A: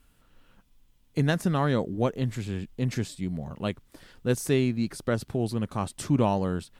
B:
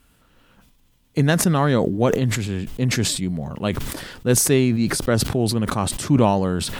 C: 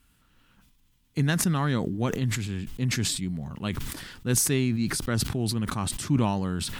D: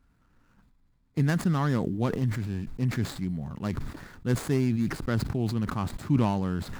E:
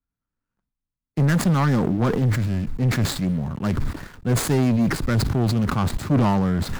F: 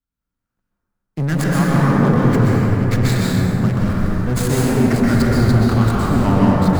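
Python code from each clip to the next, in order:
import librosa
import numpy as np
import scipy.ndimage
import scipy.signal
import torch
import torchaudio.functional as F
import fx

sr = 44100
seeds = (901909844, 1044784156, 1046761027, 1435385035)

y1 = fx.highpass(x, sr, hz=49.0, slope=6)
y1 = fx.sustainer(y1, sr, db_per_s=42.0)
y1 = y1 * 10.0 ** (6.5 / 20.0)
y2 = fx.peak_eq(y1, sr, hz=550.0, db=-9.5, octaves=1.2)
y2 = y2 * 10.0 ** (-5.0 / 20.0)
y3 = scipy.signal.medfilt(y2, 15)
y4 = fx.leveller(y3, sr, passes=3)
y4 = fx.band_widen(y4, sr, depth_pct=40)
y5 = fx.rev_plate(y4, sr, seeds[0], rt60_s=4.2, hf_ratio=0.3, predelay_ms=110, drr_db=-6.5)
y5 = y5 * 10.0 ** (-1.5 / 20.0)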